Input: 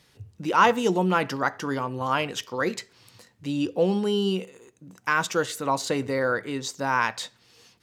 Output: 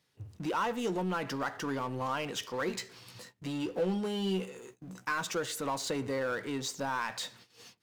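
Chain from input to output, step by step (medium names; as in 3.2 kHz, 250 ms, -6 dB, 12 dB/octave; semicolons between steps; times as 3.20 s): high-pass 86 Hz 12 dB/octave; gate -54 dBFS, range -28 dB; compression 2.5:1, threshold -25 dBFS, peak gain reduction 8.5 dB; power-law waveshaper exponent 0.7; 2.66–5.20 s: doubling 16 ms -7 dB; trim -9 dB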